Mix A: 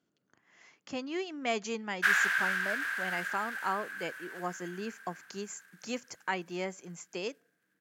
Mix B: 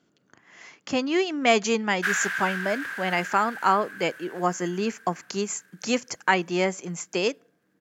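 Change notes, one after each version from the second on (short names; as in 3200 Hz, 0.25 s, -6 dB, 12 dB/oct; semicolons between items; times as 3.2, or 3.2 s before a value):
speech +12.0 dB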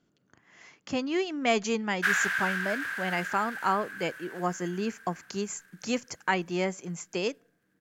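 speech -6.0 dB; master: remove HPF 200 Hz 6 dB/oct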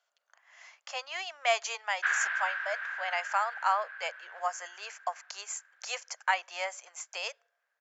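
background: add air absorption 380 m; master: add steep high-pass 600 Hz 48 dB/oct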